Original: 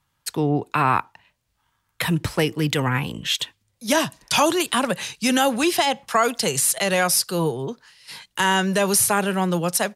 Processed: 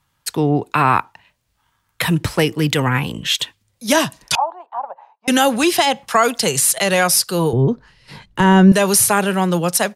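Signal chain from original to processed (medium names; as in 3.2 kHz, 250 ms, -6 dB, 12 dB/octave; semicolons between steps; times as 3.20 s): 4.35–5.28 s: Butterworth band-pass 820 Hz, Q 3.1; 7.53–8.72 s: tilt EQ -4.5 dB/octave; trim +4.5 dB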